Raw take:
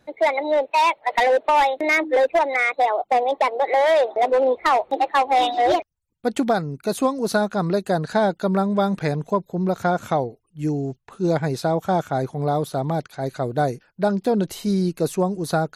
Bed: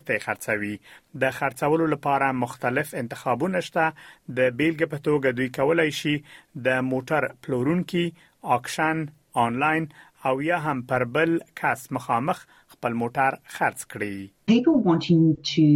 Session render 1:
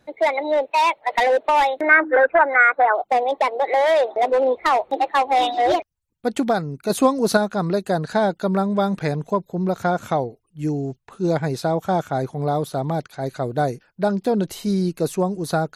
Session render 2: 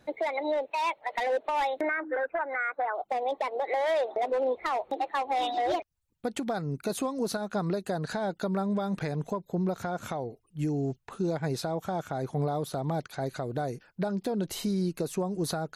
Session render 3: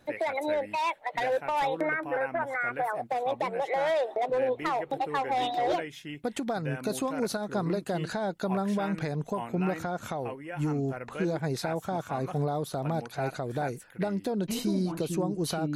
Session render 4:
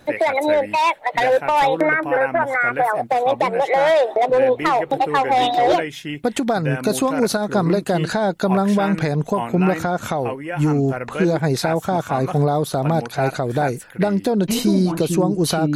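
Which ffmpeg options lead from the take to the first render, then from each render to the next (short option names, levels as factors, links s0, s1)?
-filter_complex "[0:a]asettb=1/sr,asplit=3[s0][s1][s2];[s0]atrim=end=1.814[s3];[s1]atrim=start=1.81:end=2.95,asetpts=PTS-STARTPTS,afade=t=in:d=0.004:c=qsin,afade=t=out:st=1.136:d=0.004:c=qsin,lowpass=f=1500:t=q:w=7.8[s4];[s2]atrim=start=2.946[s5];[s3][s4]acrossfade=d=0.004:c1=hsin:c2=qsin[s6];[s6][s5]acrossfade=d=0.004:c1=qsin:c2=hsin,asplit=3[s7][s8][s9];[s7]atrim=end=6.902[s10];[s8]atrim=start=6.898:end=7.372,asetpts=PTS-STARTPTS,volume=1.58[s11];[s9]atrim=start=7.368[s12];[s10][s11]acrossfade=d=0.004:c1=hsin:c2=hsin[s13];[s13][s12]acrossfade=d=0.004:c1=hsin:c2=hsin"
-af "acompressor=threshold=0.0562:ratio=6,alimiter=limit=0.0891:level=0:latency=1:release=172"
-filter_complex "[1:a]volume=0.158[s0];[0:a][s0]amix=inputs=2:normalize=0"
-af "volume=3.76"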